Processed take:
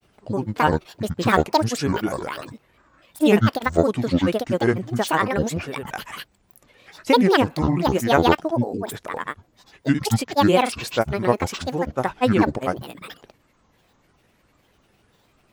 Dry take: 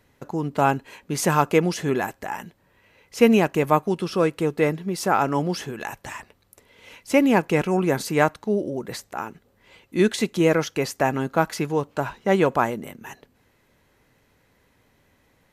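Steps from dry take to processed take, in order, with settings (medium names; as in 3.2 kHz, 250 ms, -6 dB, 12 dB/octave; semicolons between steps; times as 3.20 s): granulator, pitch spread up and down by 12 st; trim +2.5 dB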